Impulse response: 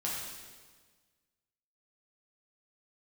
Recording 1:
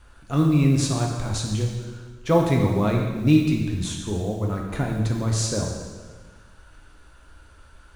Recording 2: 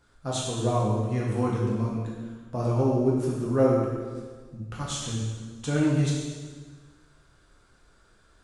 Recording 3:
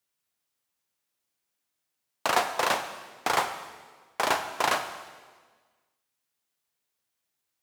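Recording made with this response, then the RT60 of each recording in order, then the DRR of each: 2; 1.5, 1.5, 1.5 seconds; −0.5, −5.5, 7.0 decibels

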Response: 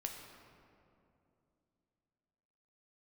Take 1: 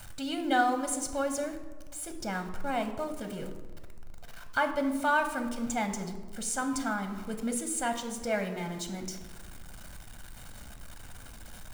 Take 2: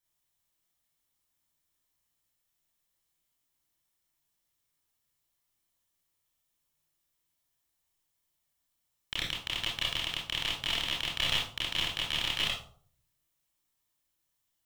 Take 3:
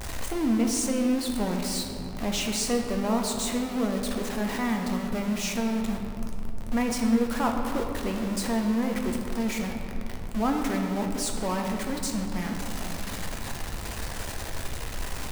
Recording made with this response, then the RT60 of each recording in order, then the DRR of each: 3; 1.5, 0.55, 2.7 seconds; 6.0, −5.0, 2.0 decibels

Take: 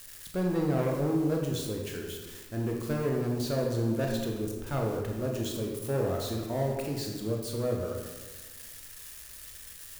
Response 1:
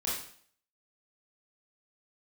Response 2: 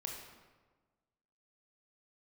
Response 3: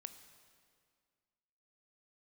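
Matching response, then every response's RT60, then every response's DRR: 2; 0.55, 1.4, 2.0 seconds; −7.0, 0.0, 9.5 decibels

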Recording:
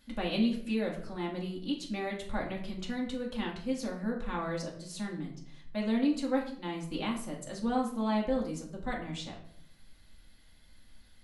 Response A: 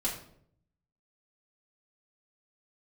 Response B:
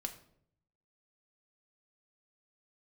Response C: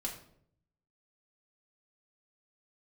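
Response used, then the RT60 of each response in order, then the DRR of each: C; 0.65, 0.65, 0.65 seconds; −6.0, 4.5, −2.0 decibels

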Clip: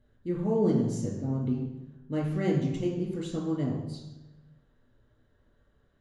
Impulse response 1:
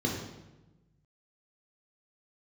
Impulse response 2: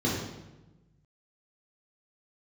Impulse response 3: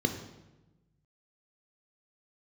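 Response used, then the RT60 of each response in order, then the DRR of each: 1; 1.1, 1.1, 1.1 seconds; −1.5, −6.0, 6.0 decibels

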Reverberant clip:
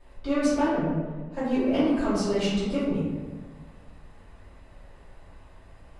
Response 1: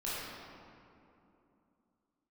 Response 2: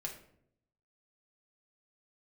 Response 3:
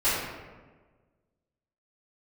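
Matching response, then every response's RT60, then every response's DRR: 3; 2.8, 0.70, 1.4 seconds; −9.5, 0.0, −16.0 decibels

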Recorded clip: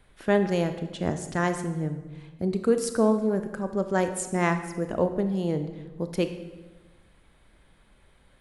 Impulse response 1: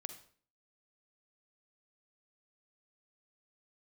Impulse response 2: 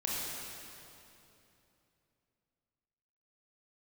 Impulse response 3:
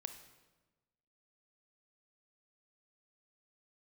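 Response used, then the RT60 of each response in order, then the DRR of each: 3; 0.50, 2.9, 1.2 seconds; 8.0, −5.5, 8.0 decibels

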